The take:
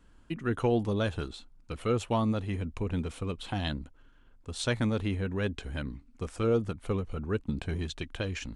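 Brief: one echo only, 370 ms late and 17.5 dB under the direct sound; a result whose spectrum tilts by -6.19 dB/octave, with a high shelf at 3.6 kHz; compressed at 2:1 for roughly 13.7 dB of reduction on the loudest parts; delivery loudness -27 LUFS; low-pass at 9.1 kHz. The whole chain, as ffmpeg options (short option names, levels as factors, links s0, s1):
-af "lowpass=9100,highshelf=f=3600:g=-7.5,acompressor=threshold=0.00398:ratio=2,aecho=1:1:370:0.133,volume=7.08"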